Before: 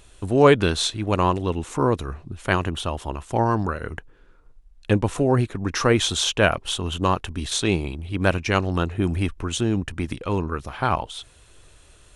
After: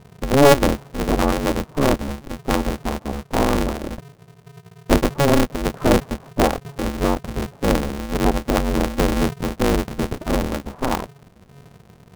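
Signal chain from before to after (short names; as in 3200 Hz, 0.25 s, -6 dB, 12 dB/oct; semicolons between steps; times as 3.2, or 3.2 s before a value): Bessel low-pass 600 Hz, order 6; polarity switched at an audio rate 140 Hz; gain +4.5 dB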